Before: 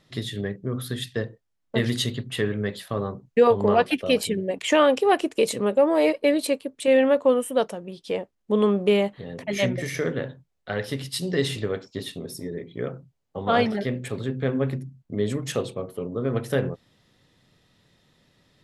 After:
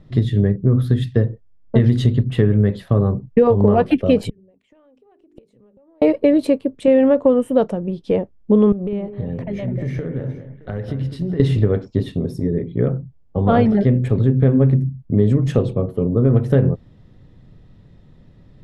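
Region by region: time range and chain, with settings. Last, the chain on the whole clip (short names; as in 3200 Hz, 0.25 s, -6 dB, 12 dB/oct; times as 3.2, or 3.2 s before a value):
4.29–6.02 notches 50/100/150/200/250/300/350/400 Hz + compressor 5:1, threshold -25 dBFS + flipped gate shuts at -25 dBFS, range -34 dB
8.72–11.4 high shelf 5600 Hz -9 dB + compressor, threshold -34 dBFS + echo with dull and thin repeats by turns 0.206 s, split 1800 Hz, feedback 55%, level -9.5 dB
whole clip: tilt -4.5 dB/oct; compressor 4:1, threshold -14 dBFS; gain +4 dB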